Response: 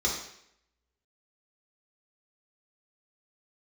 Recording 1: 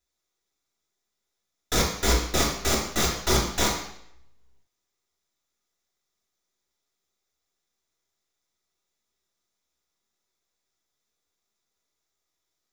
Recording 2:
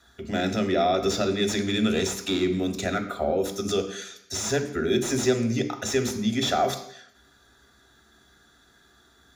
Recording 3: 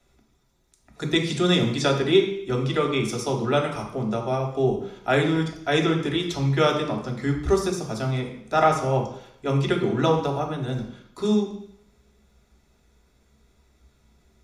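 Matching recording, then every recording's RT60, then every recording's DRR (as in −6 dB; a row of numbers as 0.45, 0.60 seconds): 1; 0.70, 0.70, 0.70 seconds; −4.5, 4.0, 0.0 decibels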